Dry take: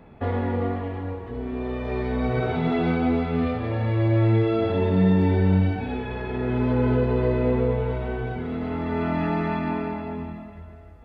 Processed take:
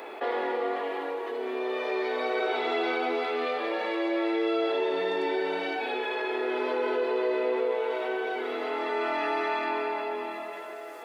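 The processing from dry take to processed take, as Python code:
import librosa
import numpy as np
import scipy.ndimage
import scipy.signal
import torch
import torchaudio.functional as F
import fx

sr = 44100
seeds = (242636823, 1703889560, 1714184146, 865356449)

y = scipy.signal.sosfilt(scipy.signal.ellip(4, 1.0, 80, 350.0, 'highpass', fs=sr, output='sos'), x)
y = fx.high_shelf(y, sr, hz=2900.0, db=11.5)
y = fx.env_flatten(y, sr, amount_pct=50)
y = y * 10.0 ** (-3.5 / 20.0)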